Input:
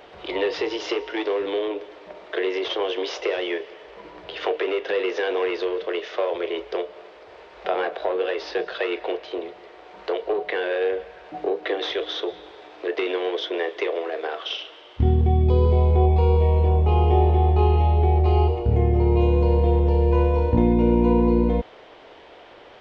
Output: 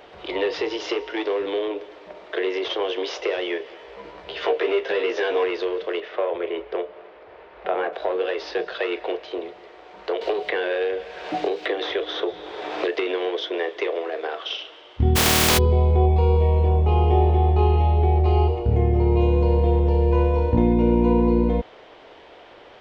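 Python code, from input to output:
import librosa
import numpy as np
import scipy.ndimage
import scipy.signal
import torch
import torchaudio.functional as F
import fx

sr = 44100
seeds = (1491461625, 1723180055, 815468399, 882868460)

y = fx.doubler(x, sr, ms=15.0, db=-3.5, at=(3.64, 5.44))
y = fx.lowpass(y, sr, hz=2600.0, slope=12, at=(6.0, 7.93))
y = fx.band_squash(y, sr, depth_pct=100, at=(10.21, 13.25))
y = fx.spec_flatten(y, sr, power=0.2, at=(15.15, 15.57), fade=0.02)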